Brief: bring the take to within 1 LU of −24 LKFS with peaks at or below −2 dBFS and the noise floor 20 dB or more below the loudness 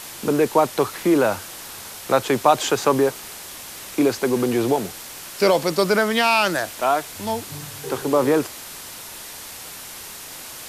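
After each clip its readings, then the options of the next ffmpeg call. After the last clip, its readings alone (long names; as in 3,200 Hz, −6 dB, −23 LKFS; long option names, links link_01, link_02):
background noise floor −37 dBFS; target noise floor −41 dBFS; integrated loudness −20.5 LKFS; sample peak −2.0 dBFS; target loudness −24.0 LKFS
→ -af "afftdn=noise_reduction=6:noise_floor=-37"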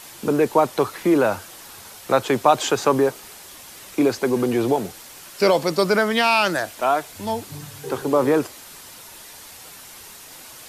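background noise floor −42 dBFS; integrated loudness −20.5 LKFS; sample peak −2.0 dBFS; target loudness −24.0 LKFS
→ -af "volume=-3.5dB"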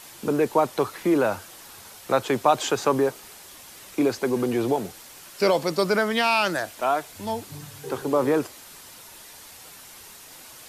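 integrated loudness −24.0 LKFS; sample peak −5.5 dBFS; background noise floor −46 dBFS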